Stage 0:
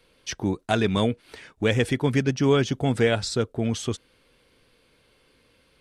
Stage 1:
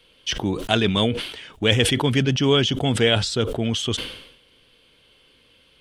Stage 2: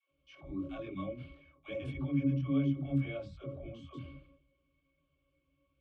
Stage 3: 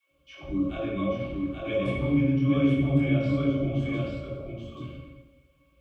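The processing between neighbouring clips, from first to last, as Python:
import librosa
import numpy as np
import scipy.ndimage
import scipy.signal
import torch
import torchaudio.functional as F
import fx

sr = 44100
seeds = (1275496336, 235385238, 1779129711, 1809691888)

y1 = fx.peak_eq(x, sr, hz=3100.0, db=13.0, octaves=0.42)
y1 = fx.sustainer(y1, sr, db_per_s=71.0)
y1 = y1 * librosa.db_to_amplitude(1.0)
y2 = fx.chorus_voices(y1, sr, voices=6, hz=0.98, base_ms=23, depth_ms=3.0, mix_pct=50)
y2 = fx.octave_resonator(y2, sr, note='C#', decay_s=0.17)
y2 = fx.dispersion(y2, sr, late='lows', ms=112.0, hz=360.0)
y2 = y2 * librosa.db_to_amplitude(-1.5)
y3 = y2 + 10.0 ** (-3.5 / 20.0) * np.pad(y2, (int(831 * sr / 1000.0), 0))[:len(y2)]
y3 = fx.rev_plate(y3, sr, seeds[0], rt60_s=1.1, hf_ratio=0.8, predelay_ms=0, drr_db=-1.0)
y3 = y3 * librosa.db_to_amplitude(8.0)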